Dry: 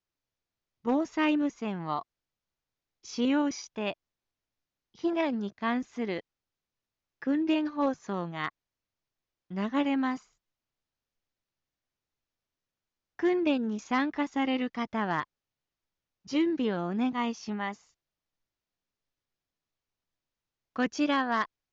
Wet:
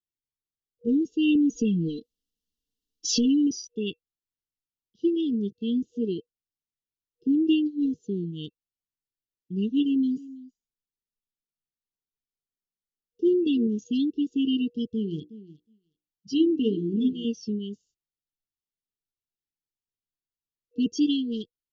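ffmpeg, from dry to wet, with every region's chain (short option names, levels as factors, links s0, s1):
-filter_complex "[0:a]asettb=1/sr,asplit=3[s0][s1][s2];[s0]atrim=end=1.354[s3];[s1]atrim=start=1.35:end=3.47,asetpts=PTS-STARTPTS,afade=t=in:d=0.004:c=qsin,afade=t=out:st=2.116:d=0.004:c=qsin,aecho=1:1:4:0.97,atrim=end_sample=93492,acompressor=threshold=0.0178:ratio=4:attack=3.2:release=140:knee=1:detection=peak,aeval=exprs='0.0841*sin(PI/2*2*val(0)/0.0841)':c=same[s4];[s2]atrim=start=3.466[s5];[s3][s4]acrossfade=d=0.004:c1=hsin:c2=qsin[s6];[s6][s5]acrossfade=d=0.004:c1=qsin:c2=hsin,asettb=1/sr,asplit=3[s7][s8][s9];[s7]atrim=end=9.844[s10];[s8]atrim=start=9.84:end=13.67,asetpts=PTS-STARTPTS,afade=t=in:d=0.004:c=qsin,afade=t=out:st=3.826:d=0.004:c=qsin,equalizer=f=2300:t=o:w=0.61:g=-7.5,aecho=1:1:4.8:0.35,atrim=end_sample=168903,aecho=1:1:326:0.126,atrim=end_sample=168903[s11];[s9]atrim=start=13.666[s12];[s10][s11]acrossfade=d=0.004:c1=hsin:c2=qsin[s13];[s13][s12]acrossfade=d=0.004:c1=qsin:c2=hsin,asettb=1/sr,asplit=3[s14][s15][s16];[s14]atrim=end=14.884[s17];[s15]atrim=start=14.88:end=17.25,asetpts=PTS-STARTPTS,afade=t=in:d=0.004:c=qsin,afade=t=out:st=2.366:d=0.004:c=qsin,bandreject=f=60:t=h:w=6,bandreject=f=120:t=h:w=6,bandreject=f=180:t=h:w=6,bandreject=f=240:t=h:w=6,bandreject=f=300:t=h:w=6,bandreject=f=360:t=h:w=6,bandreject=f=420:t=h:w=6,bandreject=f=480:t=h:w=6,bandreject=f=540:t=h:w=6,bandreject=f=600:t=h:w=6,aecho=1:1:365|730:0.178|0.0391,atrim=end_sample=104517[s18];[s16]atrim=start=17.246[s19];[s17][s18]acrossfade=d=0.004:c1=hsin:c2=qsin[s20];[s20][s19]acrossfade=d=0.004:c1=qsin:c2=hsin,afftdn=nr=16:nf=-41,afftfilt=real='re*(1-between(b*sr/4096,480,2700))':imag='im*(1-between(b*sr/4096,480,2700))':win_size=4096:overlap=0.75,volume=1.88"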